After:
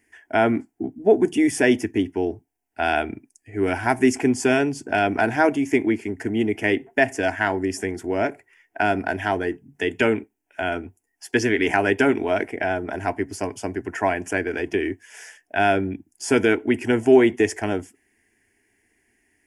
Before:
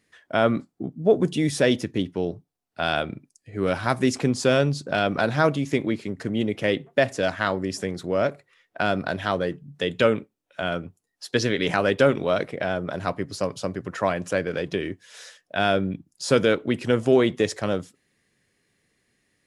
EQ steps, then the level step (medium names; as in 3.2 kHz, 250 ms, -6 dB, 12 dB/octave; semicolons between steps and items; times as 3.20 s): static phaser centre 800 Hz, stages 8; +6.0 dB